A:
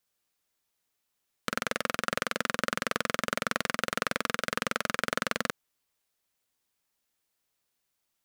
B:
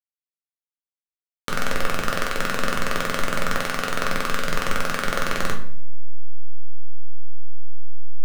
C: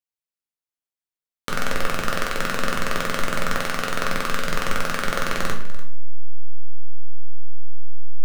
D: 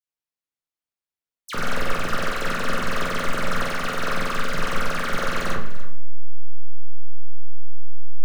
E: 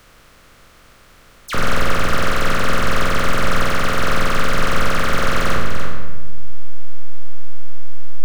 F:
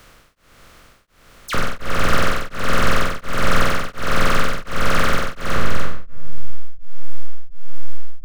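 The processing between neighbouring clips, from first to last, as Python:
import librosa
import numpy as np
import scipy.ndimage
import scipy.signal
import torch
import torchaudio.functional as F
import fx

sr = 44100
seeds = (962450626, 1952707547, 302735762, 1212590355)

y1 = fx.delta_hold(x, sr, step_db=-28.0)
y1 = fx.room_shoebox(y1, sr, seeds[0], volume_m3=69.0, walls='mixed', distance_m=0.77)
y1 = y1 * librosa.db_to_amplitude(2.0)
y2 = y1 + 10.0 ** (-16.5 / 20.0) * np.pad(y1, (int(294 * sr / 1000.0), 0))[:len(y1)]
y3 = fx.high_shelf(y2, sr, hz=5600.0, db=-5.5)
y3 = fx.dispersion(y3, sr, late='lows', ms=64.0, hz=2400.0)
y4 = fx.bin_compress(y3, sr, power=0.4)
y4 = y4 * librosa.db_to_amplitude(2.5)
y5 = y4 * np.abs(np.cos(np.pi * 1.4 * np.arange(len(y4)) / sr))
y5 = y5 * librosa.db_to_amplitude(1.5)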